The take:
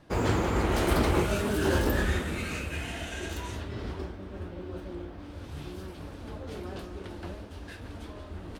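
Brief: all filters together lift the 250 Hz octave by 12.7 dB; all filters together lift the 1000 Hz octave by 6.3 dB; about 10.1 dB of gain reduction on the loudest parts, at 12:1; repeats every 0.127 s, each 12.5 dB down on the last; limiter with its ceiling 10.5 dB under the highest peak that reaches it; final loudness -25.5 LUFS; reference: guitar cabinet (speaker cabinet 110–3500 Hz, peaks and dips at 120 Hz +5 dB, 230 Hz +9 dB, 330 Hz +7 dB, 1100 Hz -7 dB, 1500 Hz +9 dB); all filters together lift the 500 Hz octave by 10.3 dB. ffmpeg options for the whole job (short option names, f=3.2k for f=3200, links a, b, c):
-af "equalizer=f=250:t=o:g=5,equalizer=f=500:t=o:g=7,equalizer=f=1k:t=o:g=6.5,acompressor=threshold=-25dB:ratio=12,alimiter=level_in=2.5dB:limit=-24dB:level=0:latency=1,volume=-2.5dB,highpass=110,equalizer=f=120:t=q:w=4:g=5,equalizer=f=230:t=q:w=4:g=9,equalizer=f=330:t=q:w=4:g=7,equalizer=f=1.1k:t=q:w=4:g=-7,equalizer=f=1.5k:t=q:w=4:g=9,lowpass=f=3.5k:w=0.5412,lowpass=f=3.5k:w=1.3066,aecho=1:1:127|254|381:0.237|0.0569|0.0137,volume=6.5dB"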